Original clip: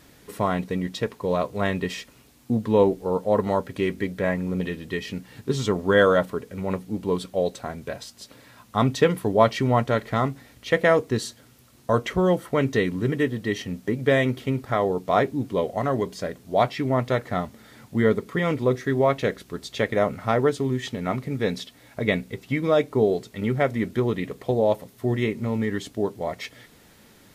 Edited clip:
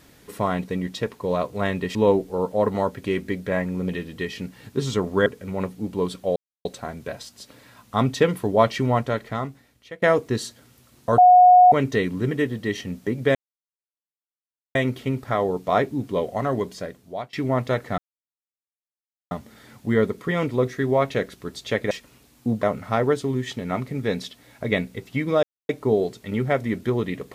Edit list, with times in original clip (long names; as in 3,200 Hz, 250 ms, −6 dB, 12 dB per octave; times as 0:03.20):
0:01.95–0:02.67: move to 0:19.99
0:05.98–0:06.36: remove
0:07.46: splice in silence 0.29 s
0:09.66–0:10.83: fade out, to −23 dB
0:11.99–0:12.53: beep over 726 Hz −8 dBFS
0:14.16: splice in silence 1.40 s
0:16.07–0:16.74: fade out, to −23 dB
0:17.39: splice in silence 1.33 s
0:22.79: splice in silence 0.26 s